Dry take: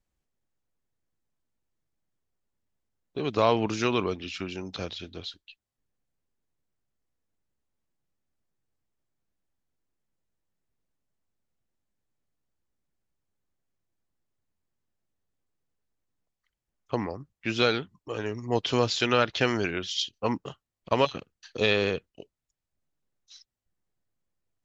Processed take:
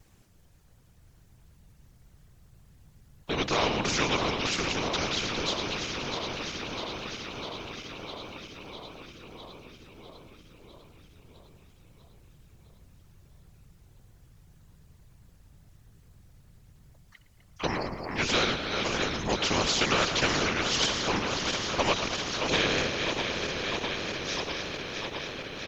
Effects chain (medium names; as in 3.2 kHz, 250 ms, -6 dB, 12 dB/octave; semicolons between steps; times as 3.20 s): backward echo that repeats 313 ms, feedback 77%, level -12.5 dB; in parallel at -0.5 dB: compression, threshold -37 dBFS, peak gain reduction 19 dB; on the sum: whisper effect; vibrato 3.3 Hz 34 cents; speed mistake 25 fps video run at 24 fps; frequency-shifting echo 112 ms, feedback 42%, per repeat +56 Hz, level -16.5 dB; spectrum-flattening compressor 2:1; trim -3.5 dB